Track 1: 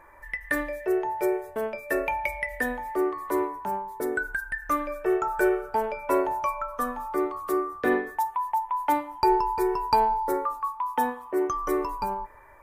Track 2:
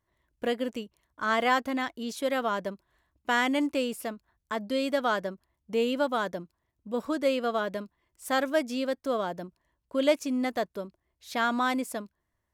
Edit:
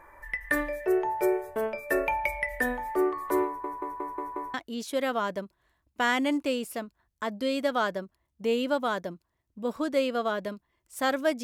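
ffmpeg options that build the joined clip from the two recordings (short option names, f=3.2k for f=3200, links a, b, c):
-filter_complex "[0:a]apad=whole_dur=11.43,atrim=end=11.43,asplit=6[a][b][c][d][e][f];[a]atrim=end=3.642[g];[b]atrim=start=3.458:end=3.642[h];[c]atrim=start=3.458:end=3.642[i];[d]atrim=start=3.458:end=3.642[j];[e]atrim=start=3.458:end=3.642[k];[f]atrim=start=3.458:end=3.642[l];[1:a]atrim=start=1.828:end=8.72[m];[g][h]acrossfade=d=0.004:c1=hsin:c2=hsin[n];[n][i]acrossfade=d=0.004:c1=hsin:c2=hsin[o];[o][j]acrossfade=d=0.004:c1=hsin:c2=hsin[p];[p][k]acrossfade=d=0.004:c1=hsin:c2=hsin[q];[q][l]acrossfade=d=0.004:c1=hsin:c2=hsin[r];[r][m]acrossfade=d=0.004:c1=hsin:c2=hsin"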